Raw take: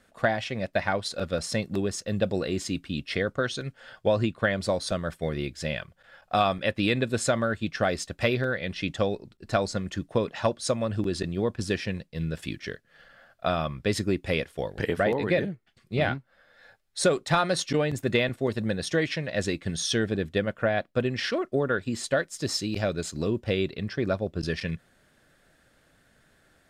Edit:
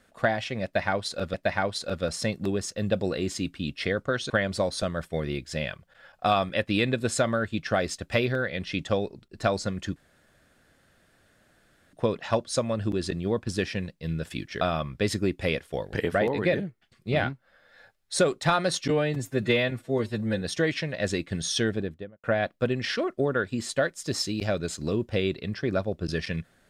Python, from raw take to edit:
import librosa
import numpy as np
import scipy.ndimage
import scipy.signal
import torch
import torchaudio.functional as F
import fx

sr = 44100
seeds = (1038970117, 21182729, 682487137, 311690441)

y = fx.studio_fade_out(x, sr, start_s=19.97, length_s=0.61)
y = fx.edit(y, sr, fx.repeat(start_s=0.64, length_s=0.7, count=2),
    fx.cut(start_s=3.6, length_s=0.79),
    fx.insert_room_tone(at_s=10.05, length_s=1.97),
    fx.cut(start_s=12.73, length_s=0.73),
    fx.stretch_span(start_s=17.75, length_s=1.01, factor=1.5), tone=tone)